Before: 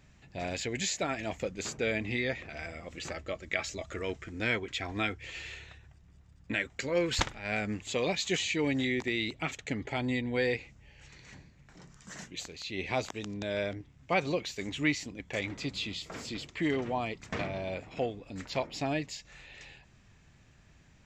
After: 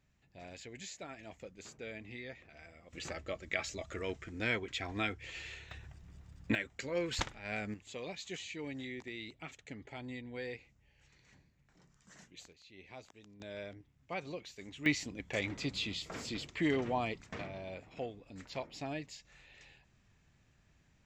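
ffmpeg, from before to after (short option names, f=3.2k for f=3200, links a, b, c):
-af "asetnsamples=n=441:p=0,asendcmd='2.93 volume volume -3.5dB;5.71 volume volume 4dB;6.55 volume volume -6.5dB;7.74 volume volume -13dB;12.53 volume volume -19.5dB;13.4 volume volume -12dB;14.86 volume volume -1.5dB;17.22 volume volume -8.5dB',volume=-14.5dB"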